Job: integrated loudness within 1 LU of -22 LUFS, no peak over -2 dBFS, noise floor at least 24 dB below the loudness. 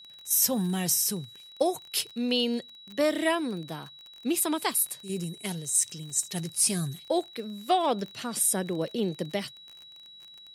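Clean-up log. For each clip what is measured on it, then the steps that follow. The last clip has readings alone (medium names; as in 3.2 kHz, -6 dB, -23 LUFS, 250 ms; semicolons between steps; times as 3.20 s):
tick rate 33 per s; steady tone 3.9 kHz; tone level -47 dBFS; loudness -27.5 LUFS; peak level -10.5 dBFS; loudness target -22.0 LUFS
-> de-click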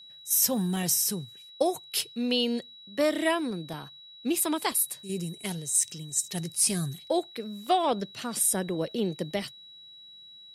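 tick rate 0 per s; steady tone 3.9 kHz; tone level -47 dBFS
-> band-stop 3.9 kHz, Q 30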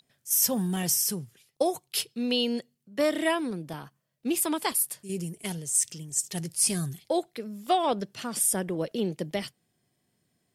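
steady tone not found; loudness -27.5 LUFS; peak level -10.5 dBFS; loudness target -22.0 LUFS
-> trim +5.5 dB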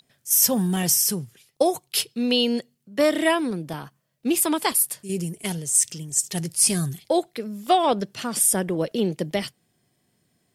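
loudness -22.0 LUFS; peak level -5.0 dBFS; noise floor -71 dBFS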